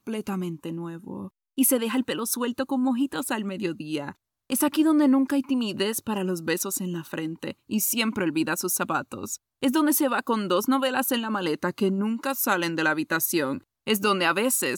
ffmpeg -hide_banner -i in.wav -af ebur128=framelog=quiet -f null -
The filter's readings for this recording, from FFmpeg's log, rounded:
Integrated loudness:
  I:         -25.3 LUFS
  Threshold: -35.6 LUFS
Loudness range:
  LRA:         2.3 LU
  Threshold: -45.5 LUFS
  LRA low:   -26.9 LUFS
  LRA high:  -24.6 LUFS